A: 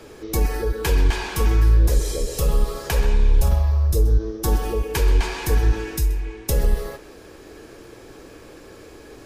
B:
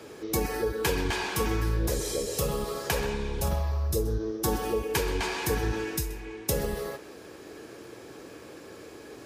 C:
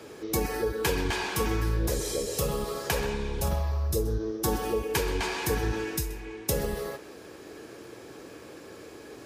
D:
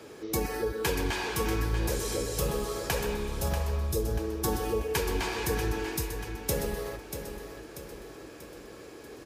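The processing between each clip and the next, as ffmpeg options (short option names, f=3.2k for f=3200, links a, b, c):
-af "highpass=110,volume=-2dB"
-af anull
-af "aecho=1:1:638|1276|1914|2552|3190:0.355|0.167|0.0784|0.0368|0.0173,volume=-2dB"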